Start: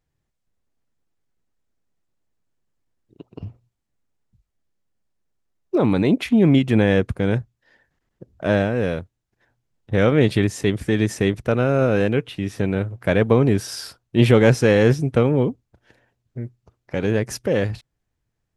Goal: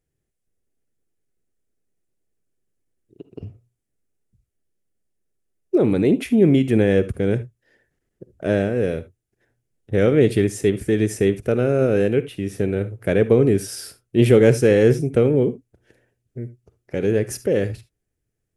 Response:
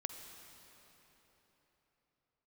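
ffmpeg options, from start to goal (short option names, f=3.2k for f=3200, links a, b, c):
-filter_complex "[0:a]equalizer=f=400:t=o:w=0.67:g=7,equalizer=f=1k:t=o:w=0.67:g=-10,equalizer=f=4k:t=o:w=0.67:g=-5,equalizer=f=10k:t=o:w=0.67:g=8[a];[1:a]atrim=start_sample=2205,afade=t=out:st=0.13:d=0.01,atrim=end_sample=6174[b];[a][b]afir=irnorm=-1:irlink=0"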